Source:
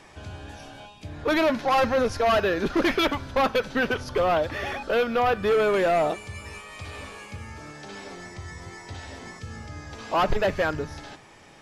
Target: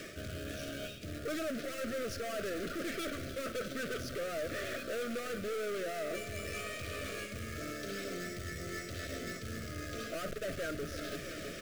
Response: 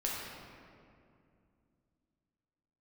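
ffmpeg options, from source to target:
-filter_complex "[0:a]aeval=exprs='(tanh(63.1*val(0)+0.45)-tanh(0.45))/63.1':c=same,aecho=1:1:329|658|987|1316|1645:0.2|0.102|0.0519|0.0265|0.0135,asplit=2[a][b];[b]adynamicsmooth=sensitivity=5:basefreq=610,volume=-1dB[c];[a][c]amix=inputs=2:normalize=0,lowshelf=f=62:g=-6,areverse,acompressor=threshold=-44dB:ratio=5,areverse,acrusher=bits=3:mode=log:mix=0:aa=0.000001,asuperstop=centerf=900:order=12:qfactor=1.8,lowshelf=f=270:g=-6,bandreject=f=50:t=h:w=6,bandreject=f=100:t=h:w=6,bandreject=f=150:t=h:w=6,volume=9dB"

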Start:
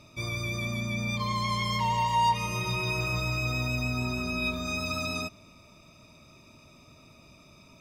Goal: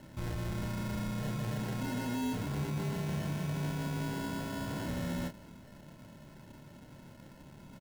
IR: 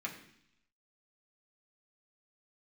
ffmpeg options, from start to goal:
-filter_complex "[0:a]highpass=170,bass=f=250:g=9,treble=f=4k:g=-5,alimiter=limit=-23.5dB:level=0:latency=1,acrusher=samples=37:mix=1:aa=0.000001,asoftclip=type=tanh:threshold=-33.5dB,asettb=1/sr,asplit=3[a][b][c];[a]atrim=end=2.434[d];[b]atrim=start=2.43:end=4.86,asetpts=PTS-STARTPTS,afade=t=in:d=0.004:c=qsin,afade=t=out:st=2.426:d=0.004:c=qsin,afreqshift=26[e];[c]atrim=start=4.856[f];[d][e]acrossfade=d=0.004:c1=hsin:c2=qsin[g];[g][f]acrossfade=d=0.004:c1=qsin:c2=hsin,asplit=2[h][i];[i]adelay=28,volume=-5dB[j];[h][j]amix=inputs=2:normalize=0"

